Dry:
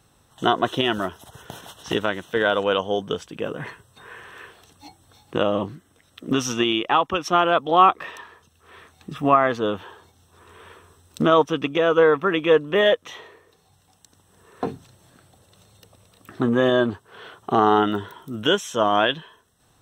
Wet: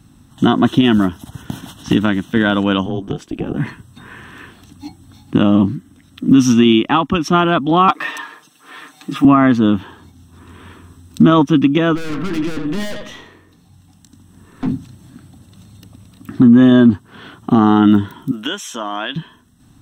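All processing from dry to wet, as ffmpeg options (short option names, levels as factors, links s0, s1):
-filter_complex "[0:a]asettb=1/sr,asplit=3[s0][s1][s2];[s0]atrim=end=2.864[s3];[s1]atrim=start=2.86:end=3.57,asetpts=PTS-STARTPTS,afade=t=in:d=0.004:c=qsin,afade=t=out:st=0.706:d=0.004:c=qsin,acompressor=threshold=0.0447:ratio=6:attack=3.2:release=140:knee=1:detection=peak,highpass=f=390:t=q:w=3.3,tremolo=f=290:d=0.621[s4];[s2]atrim=start=3.566[s5];[s3][s4]acrossfade=d=0.004:c1=hsin:c2=qsin[s6];[s6][s5]acrossfade=d=0.004:c1=qsin:c2=hsin,asettb=1/sr,asplit=3[s7][s8][s9];[s7]atrim=end=7.884[s10];[s8]atrim=start=7.88:end=9.25,asetpts=PTS-STARTPTS,afade=t=in:d=0.004:c=qsin,afade=t=out:st=1.366:d=0.004:c=qsin,highpass=490,aecho=1:1:6.6:0.7,atrim=end_sample=60417,acontrast=48[s11];[s9]atrim=start=9.246[s12];[s10][s11]acrossfade=d=0.004:c1=hsin:c2=qsin[s13];[s13][s12]acrossfade=d=0.004:c1=qsin:c2=hsin,asettb=1/sr,asplit=3[s14][s15][s16];[s14]atrim=end=11.954[s17];[s15]atrim=start=11.95:end=14.71,asetpts=PTS-STARTPTS,afade=t=in:d=0.004:c=qsin,afade=t=out:st=2.756:d=0.004:c=qsin,asplit=2[s18][s19];[s19]adelay=23,volume=0.266[s20];[s18][s20]amix=inputs=2:normalize=0,atrim=end_sample=121716,aecho=1:1:85|170|255:0.237|0.064|0.0173,atrim=end_sample=121716,aeval=exprs='(tanh(28.2*val(0)+0.4)-tanh(0.4))/28.2':c=same[s21];[s16]atrim=start=14.706[s22];[s17][s21]acrossfade=d=0.004:c1=hsin:c2=qsin[s23];[s23][s22]acrossfade=d=0.004:c1=qsin:c2=hsin,asettb=1/sr,asplit=3[s24][s25][s26];[s24]atrim=end=18.314[s27];[s25]atrim=start=18.31:end=19.16,asetpts=PTS-STARTPTS,afade=t=in:d=0.004:c=qsin,afade=t=out:st=0.846:d=0.004:c=qsin,highpass=530,acompressor=threshold=0.0447:ratio=2:attack=3.2:release=140:knee=1:detection=peak[s28];[s26]atrim=start=19.156[s29];[s27][s28]acrossfade=d=0.004:c1=hsin:c2=qsin[s30];[s30][s29]acrossfade=d=0.004:c1=qsin:c2=hsin,lowshelf=f=350:t=q:w=3:g=9,alimiter=level_in=1.88:limit=0.891:release=50:level=0:latency=1,volume=0.891"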